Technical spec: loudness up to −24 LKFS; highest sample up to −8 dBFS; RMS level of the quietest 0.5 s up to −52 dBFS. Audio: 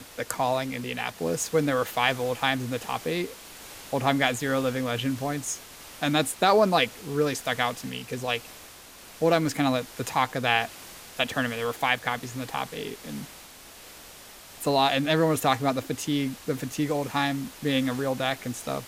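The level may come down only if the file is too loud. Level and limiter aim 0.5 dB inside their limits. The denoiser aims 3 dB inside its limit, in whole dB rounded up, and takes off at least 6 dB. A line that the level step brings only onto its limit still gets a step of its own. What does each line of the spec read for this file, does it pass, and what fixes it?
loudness −26.5 LKFS: in spec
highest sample −6.5 dBFS: out of spec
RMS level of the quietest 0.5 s −47 dBFS: out of spec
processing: broadband denoise 8 dB, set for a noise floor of −47 dBFS
brickwall limiter −8.5 dBFS

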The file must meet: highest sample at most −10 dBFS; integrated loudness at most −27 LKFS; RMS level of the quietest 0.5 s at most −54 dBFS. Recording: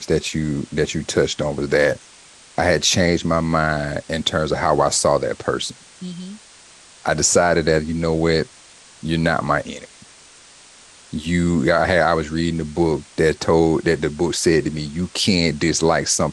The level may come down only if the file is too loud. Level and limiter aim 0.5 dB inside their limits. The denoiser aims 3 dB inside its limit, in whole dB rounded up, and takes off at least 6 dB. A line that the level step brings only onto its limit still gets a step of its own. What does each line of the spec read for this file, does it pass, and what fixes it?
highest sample −4.0 dBFS: out of spec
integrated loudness −19.0 LKFS: out of spec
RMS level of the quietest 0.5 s −46 dBFS: out of spec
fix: level −8.5 dB

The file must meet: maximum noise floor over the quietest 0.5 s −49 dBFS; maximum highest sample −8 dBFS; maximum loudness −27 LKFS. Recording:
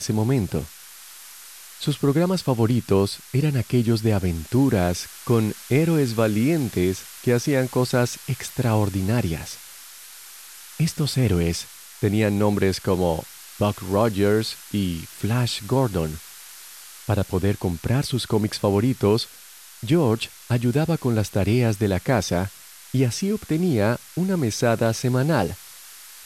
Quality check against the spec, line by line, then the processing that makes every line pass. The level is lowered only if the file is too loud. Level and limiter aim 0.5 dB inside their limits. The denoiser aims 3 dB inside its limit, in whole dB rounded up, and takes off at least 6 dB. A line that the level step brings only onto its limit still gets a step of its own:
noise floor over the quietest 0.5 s −45 dBFS: out of spec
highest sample −7.0 dBFS: out of spec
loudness −22.5 LKFS: out of spec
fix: level −5 dB

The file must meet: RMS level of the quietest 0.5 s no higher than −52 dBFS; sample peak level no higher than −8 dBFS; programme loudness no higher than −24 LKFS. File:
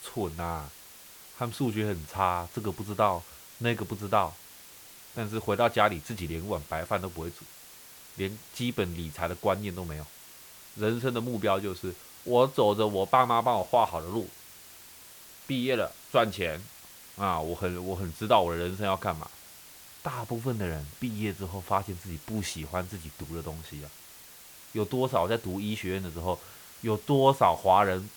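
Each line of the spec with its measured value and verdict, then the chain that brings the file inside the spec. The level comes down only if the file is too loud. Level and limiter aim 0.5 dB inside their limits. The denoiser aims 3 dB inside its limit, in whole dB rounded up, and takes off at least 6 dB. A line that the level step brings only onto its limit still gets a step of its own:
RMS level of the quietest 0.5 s −50 dBFS: out of spec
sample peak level −7.5 dBFS: out of spec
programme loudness −29.5 LKFS: in spec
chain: broadband denoise 6 dB, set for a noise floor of −50 dBFS
brickwall limiter −8.5 dBFS

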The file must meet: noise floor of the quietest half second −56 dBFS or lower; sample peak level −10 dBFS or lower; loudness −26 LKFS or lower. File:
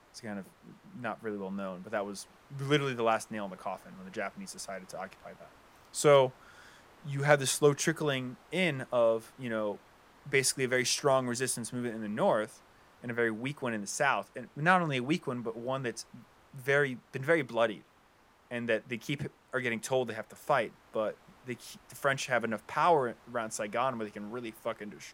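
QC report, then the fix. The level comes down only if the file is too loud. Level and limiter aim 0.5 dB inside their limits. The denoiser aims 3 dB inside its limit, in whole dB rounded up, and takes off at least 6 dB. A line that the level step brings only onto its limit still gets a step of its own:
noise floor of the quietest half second −63 dBFS: in spec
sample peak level −7.5 dBFS: out of spec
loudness −31.5 LKFS: in spec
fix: brickwall limiter −10.5 dBFS

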